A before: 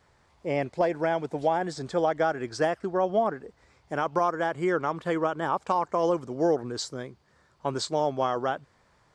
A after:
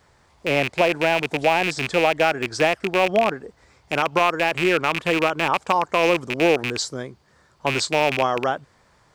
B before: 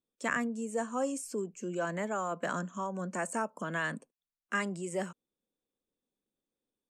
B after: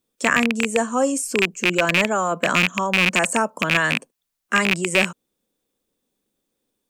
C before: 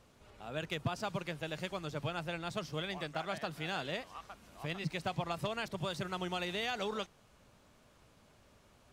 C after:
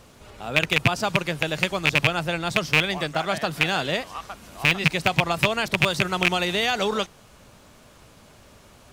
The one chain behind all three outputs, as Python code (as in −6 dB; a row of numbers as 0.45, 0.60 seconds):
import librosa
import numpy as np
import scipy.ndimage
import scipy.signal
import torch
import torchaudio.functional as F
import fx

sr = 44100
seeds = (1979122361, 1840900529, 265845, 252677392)

y = fx.rattle_buzz(x, sr, strikes_db=-39.0, level_db=-18.0)
y = fx.high_shelf(y, sr, hz=5400.0, db=4.0)
y = y * 10.0 ** (-3 / 20.0) / np.max(np.abs(y))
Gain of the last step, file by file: +5.5, +12.5, +13.0 decibels